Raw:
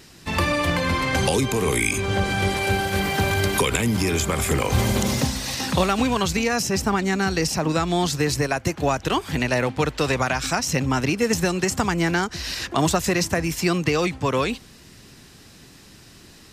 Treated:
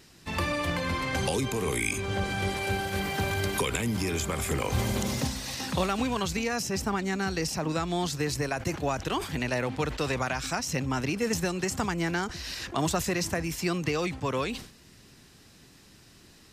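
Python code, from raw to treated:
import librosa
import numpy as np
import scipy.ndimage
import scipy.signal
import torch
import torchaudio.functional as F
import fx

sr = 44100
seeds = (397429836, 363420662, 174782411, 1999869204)

y = fx.sustainer(x, sr, db_per_s=110.0)
y = y * 10.0 ** (-7.5 / 20.0)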